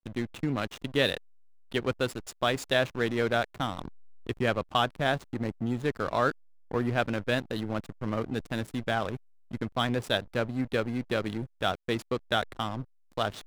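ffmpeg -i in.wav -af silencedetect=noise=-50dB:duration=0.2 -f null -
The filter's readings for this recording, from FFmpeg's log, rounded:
silence_start: 1.18
silence_end: 1.72 | silence_duration: 0.54
silence_start: 6.31
silence_end: 6.71 | silence_duration: 0.40
silence_start: 9.17
silence_end: 9.51 | silence_duration: 0.34
silence_start: 12.85
silence_end: 13.12 | silence_duration: 0.27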